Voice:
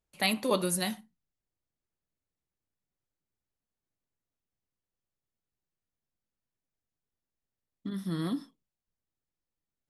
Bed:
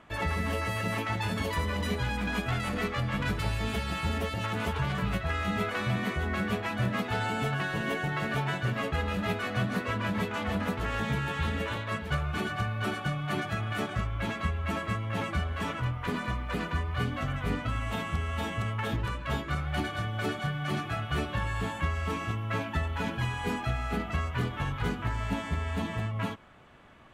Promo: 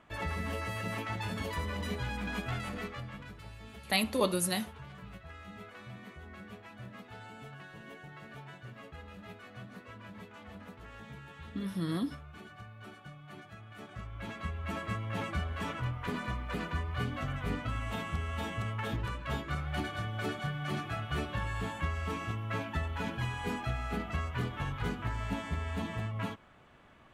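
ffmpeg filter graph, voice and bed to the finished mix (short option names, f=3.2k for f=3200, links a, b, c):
-filter_complex "[0:a]adelay=3700,volume=-1dB[a];[1:a]volume=8.5dB,afade=t=out:st=2.54:d=0.73:silence=0.237137,afade=t=in:st=13.74:d=1.24:silence=0.199526[b];[a][b]amix=inputs=2:normalize=0"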